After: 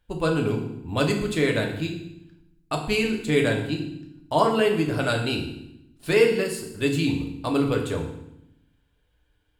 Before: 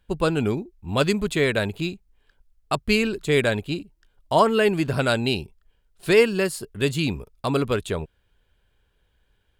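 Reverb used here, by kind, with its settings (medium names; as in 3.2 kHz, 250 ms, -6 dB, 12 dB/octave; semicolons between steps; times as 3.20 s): FDN reverb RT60 0.79 s, low-frequency decay 1.55×, high-frequency decay 0.95×, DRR 1 dB; trim -4.5 dB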